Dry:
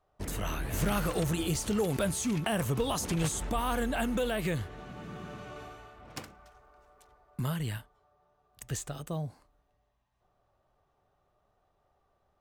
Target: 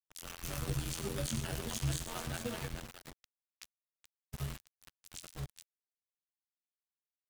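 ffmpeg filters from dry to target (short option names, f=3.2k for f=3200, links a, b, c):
-filter_complex "[0:a]aecho=1:1:58|90|174|183|230|733:0.266|0.188|0.335|0.112|0.224|0.447,flanger=delay=5.3:depth=8.5:regen=17:speed=0.28:shape=sinusoidal,afftfilt=real='hypot(re,im)*cos(PI*b)':imag='0':win_size=2048:overlap=0.75,afreqshift=-34,aeval=exprs='val(0)*gte(abs(val(0)),0.0141)':c=same,equalizer=f=610:w=0.33:g=-8,atempo=1.7,adynamicequalizer=threshold=0.001:dfrequency=100:dqfactor=5.1:tfrequency=100:tqfactor=5.1:attack=5:release=100:ratio=0.375:range=1.5:mode=cutabove:tftype=bell,asplit=2[a][b];[b]asetrate=22050,aresample=44100,atempo=2,volume=-5dB[c];[a][c]amix=inputs=2:normalize=0,volume=1dB"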